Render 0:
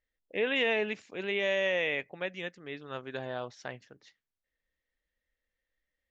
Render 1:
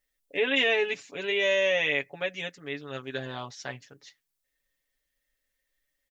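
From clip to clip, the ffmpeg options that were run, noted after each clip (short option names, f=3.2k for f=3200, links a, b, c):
-af "highshelf=f=4.2k:g=12,aecho=1:1:7.1:0.83"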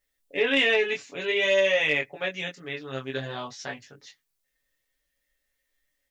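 -af "flanger=delay=20:depth=3:speed=0.53,asoftclip=type=tanh:threshold=-14dB,volume=5.5dB"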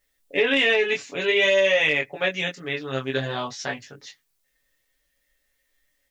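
-af "alimiter=limit=-16dB:level=0:latency=1:release=254,volume=6dB"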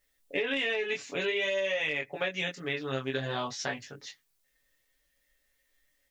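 -af "acompressor=threshold=-26dB:ratio=5,volume=-2dB"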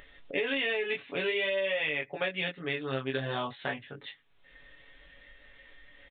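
-af "aresample=8000,aresample=44100,acompressor=mode=upward:threshold=-36dB:ratio=2.5"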